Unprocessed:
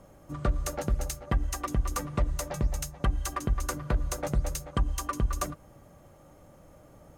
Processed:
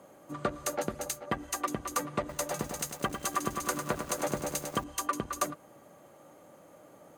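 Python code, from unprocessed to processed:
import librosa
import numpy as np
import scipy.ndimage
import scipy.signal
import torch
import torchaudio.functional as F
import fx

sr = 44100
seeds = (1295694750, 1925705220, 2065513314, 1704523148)

y = scipy.signal.sosfilt(scipy.signal.butter(2, 250.0, 'highpass', fs=sr, output='sos'), x)
y = fx.notch(y, sr, hz=5400.0, q=11.0)
y = fx.echo_crushed(y, sr, ms=101, feedback_pct=80, bits=8, wet_db=-7.5, at=(2.19, 4.84))
y = y * 10.0 ** (2.0 / 20.0)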